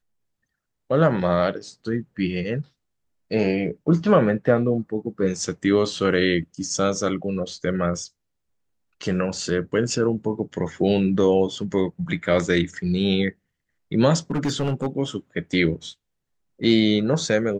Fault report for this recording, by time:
0:14.31–0:14.87: clipping −18.5 dBFS

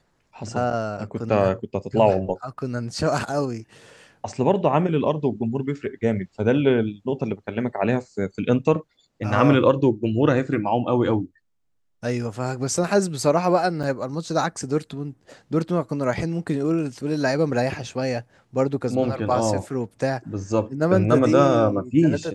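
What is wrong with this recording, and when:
0:13.83–0:13.84: drop-out 6.3 ms

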